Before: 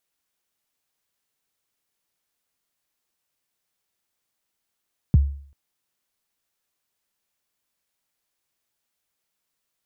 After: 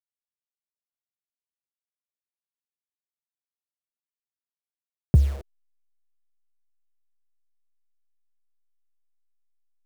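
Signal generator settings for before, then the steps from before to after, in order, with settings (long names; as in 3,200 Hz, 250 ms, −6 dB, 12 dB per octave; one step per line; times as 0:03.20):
synth kick length 0.39 s, from 190 Hz, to 70 Hz, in 22 ms, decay 0.52 s, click off, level −8.5 dB
hold until the input has moved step −39.5 dBFS
flat-topped bell 510 Hz +9 dB 1.1 octaves
in parallel at −6 dB: soft clipping −22.5 dBFS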